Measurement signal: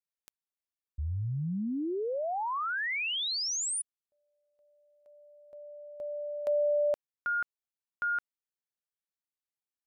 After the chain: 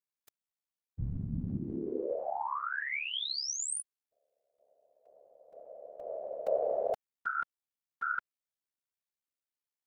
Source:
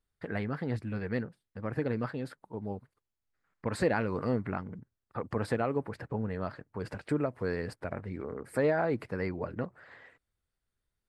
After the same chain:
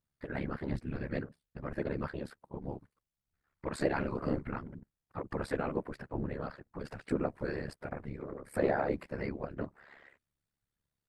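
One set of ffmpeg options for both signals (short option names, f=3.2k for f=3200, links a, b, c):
-af "afftfilt=real='hypot(re,im)*cos(2*PI*random(0))':imag='hypot(re,im)*sin(2*PI*random(1))':win_size=512:overlap=0.75,acontrast=45,aeval=exprs='val(0)*sin(2*PI*35*n/s)':c=same"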